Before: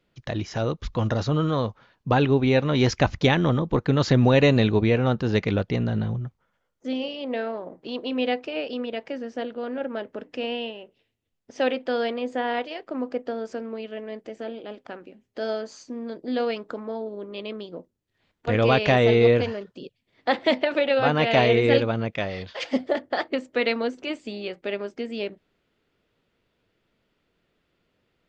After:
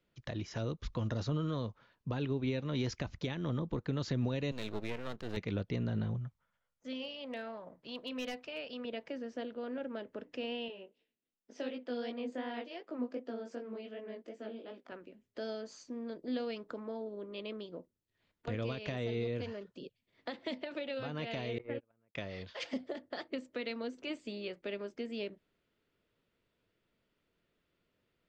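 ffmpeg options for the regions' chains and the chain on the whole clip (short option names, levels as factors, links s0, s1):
-filter_complex "[0:a]asettb=1/sr,asplit=3[s0][s1][s2];[s0]atrim=end=4.514[s3];[s1]atrim=start=4.51:end=5.37,asetpts=PTS-STARTPTS,afade=t=in:d=0.004:c=qsin,afade=t=out:st=0.856:d=0.004:c=qsin,equalizer=f=88:w=0.39:g=-8.5,aeval=exprs='max(val(0),0)':c=same[s4];[s2]atrim=start=5.366[s5];[s3][s4]acrossfade=d=0.004:c1=hsin:c2=qsin[s6];[s6][s5]acrossfade=d=0.004:c1=qsin:c2=hsin,asettb=1/sr,asplit=3[s7][s8][s9];[s7]atrim=end=6.174[s10];[s8]atrim=start=6.17:end=8.85,asetpts=PTS-STARTPTS,afade=t=in:d=0.004:c=qsin,afade=t=out:st=2.676:d=0.004:c=qsin,equalizer=f=360:t=o:w=1:g=-11,aeval=exprs='clip(val(0),-1,0.0708)':c=same[s11];[s9]atrim=start=8.846[s12];[s10][s11]acrossfade=d=0.004:c1=hsin:c2=qsin[s13];[s13][s12]acrossfade=d=0.004:c1=qsin:c2=hsin,asettb=1/sr,asplit=3[s14][s15][s16];[s14]atrim=end=10.684[s17];[s15]atrim=start=10.68:end=14.92,asetpts=PTS-STARTPTS,afade=t=in:d=0.004:c=qsin,afade=t=out:st=4.236:d=0.004:c=qsin,lowshelf=f=150:t=q:w=1.5:g=-12.5,flanger=delay=15.5:depth=5.9:speed=2.7[s18];[s16]atrim=start=14.916[s19];[s17][s18]acrossfade=d=0.004:c1=hsin:c2=qsin[s20];[s20][s19]acrossfade=d=0.004:c1=qsin:c2=hsin,asettb=1/sr,asplit=3[s21][s22][s23];[s21]atrim=end=21.584[s24];[s22]atrim=start=21.58:end=22.15,asetpts=PTS-STARTPTS,afade=t=in:d=0.004:c=qsin,afade=t=out:st=0.566:d=0.004:c=qsin,lowpass=f=2300:w=0.5412,lowpass=f=2300:w=1.3066,lowshelf=f=150:g=-6.5,agate=range=0.0141:threshold=0.1:ratio=16:release=100:detection=peak[s25];[s23]atrim=start=22.146[s26];[s24][s25]acrossfade=d=0.004:c1=hsin:c2=qsin[s27];[s27][s26]acrossfade=d=0.004:c1=qsin:c2=hsin,bandreject=f=780:w=12,alimiter=limit=0.15:level=0:latency=1:release=460,acrossover=split=380|3000[s28][s29][s30];[s29]acompressor=threshold=0.0224:ratio=6[s31];[s28][s31][s30]amix=inputs=3:normalize=0,volume=0.398"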